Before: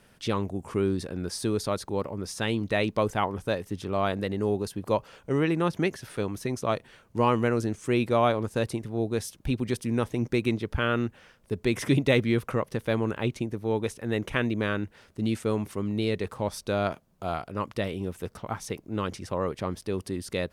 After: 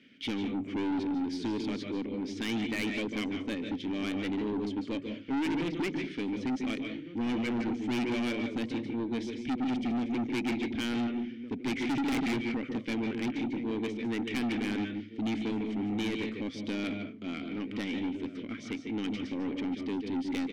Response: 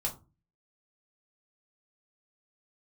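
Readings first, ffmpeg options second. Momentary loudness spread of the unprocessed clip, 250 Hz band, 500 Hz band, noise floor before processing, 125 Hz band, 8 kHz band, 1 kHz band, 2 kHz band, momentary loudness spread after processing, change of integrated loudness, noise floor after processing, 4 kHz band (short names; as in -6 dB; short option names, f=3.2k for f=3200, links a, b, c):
8 LU, -0.5 dB, -10.5 dB, -60 dBFS, -12.0 dB, -9.5 dB, -9.5 dB, -4.0 dB, 6 LU, -4.5 dB, -44 dBFS, -2.5 dB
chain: -filter_complex "[0:a]lowpass=f=6.9k:w=0.5412,lowpass=f=6.9k:w=1.3066,lowshelf=f=230:g=-5,acontrast=73,asplit=3[a][b][c];[a]bandpass=f=270:t=q:w=8,volume=0dB[d];[b]bandpass=f=2.29k:t=q:w=8,volume=-6dB[e];[c]bandpass=f=3.01k:t=q:w=8,volume=-9dB[f];[d][e][f]amix=inputs=3:normalize=0,asplit=2[g][h];[h]adelay=1458,volume=-18dB,highshelf=f=4k:g=-32.8[i];[g][i]amix=inputs=2:normalize=0,asplit=2[j][k];[1:a]atrim=start_sample=2205,adelay=145[l];[k][l]afir=irnorm=-1:irlink=0,volume=-10dB[m];[j][m]amix=inputs=2:normalize=0,aeval=exprs='(tanh(63.1*val(0)+0.1)-tanh(0.1))/63.1':c=same,volume=8dB"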